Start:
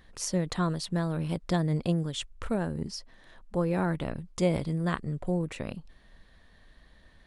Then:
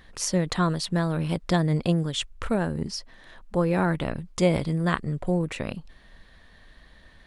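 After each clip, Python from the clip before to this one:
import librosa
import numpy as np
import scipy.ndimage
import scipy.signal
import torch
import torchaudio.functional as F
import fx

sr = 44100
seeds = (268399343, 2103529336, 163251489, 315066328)

y = fx.peak_eq(x, sr, hz=2200.0, db=3.0, octaves=2.7)
y = F.gain(torch.from_numpy(y), 4.0).numpy()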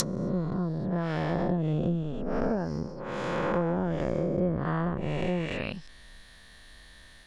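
y = fx.spec_swells(x, sr, rise_s=3.0)
y = scipy.signal.lfilter([1.0, -0.8], [1.0], y)
y = fx.env_lowpass_down(y, sr, base_hz=440.0, full_db=-27.5)
y = F.gain(torch.from_numpy(y), 8.0).numpy()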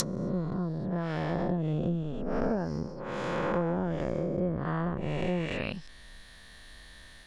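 y = fx.rider(x, sr, range_db=10, speed_s=2.0)
y = F.gain(torch.from_numpy(y), -2.0).numpy()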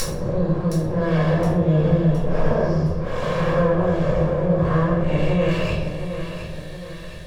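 y = fx.lower_of_two(x, sr, delay_ms=1.8)
y = fx.echo_feedback(y, sr, ms=716, feedback_pct=46, wet_db=-9.5)
y = fx.room_shoebox(y, sr, seeds[0], volume_m3=160.0, walls='mixed', distance_m=2.2)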